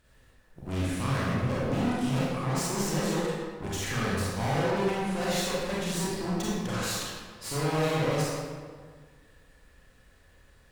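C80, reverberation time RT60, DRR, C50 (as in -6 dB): -0.5 dB, 1.7 s, -8.0 dB, -3.5 dB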